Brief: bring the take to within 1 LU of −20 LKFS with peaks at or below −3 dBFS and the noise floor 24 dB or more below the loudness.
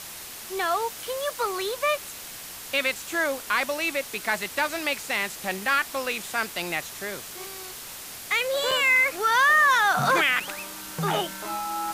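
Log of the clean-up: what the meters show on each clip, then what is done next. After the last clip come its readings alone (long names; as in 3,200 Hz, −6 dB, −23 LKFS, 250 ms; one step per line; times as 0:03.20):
number of dropouts 2; longest dropout 3.8 ms; background noise floor −40 dBFS; target noise floor −49 dBFS; integrated loudness −24.5 LKFS; sample peak −10.5 dBFS; target loudness −20.0 LKFS
→ repair the gap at 0:08.71/0:10.40, 3.8 ms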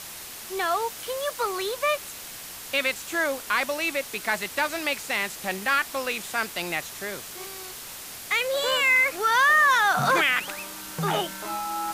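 number of dropouts 0; background noise floor −40 dBFS; target noise floor −49 dBFS
→ noise reduction from a noise print 9 dB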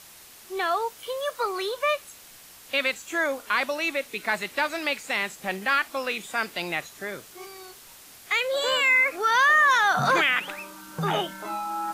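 background noise floor −49 dBFS; integrated loudness −24.5 LKFS; sample peak −11.0 dBFS; target loudness −20.0 LKFS
→ level +4.5 dB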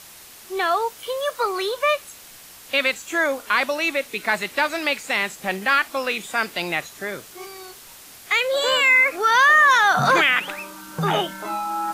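integrated loudness −20.0 LKFS; sample peak −6.5 dBFS; background noise floor −44 dBFS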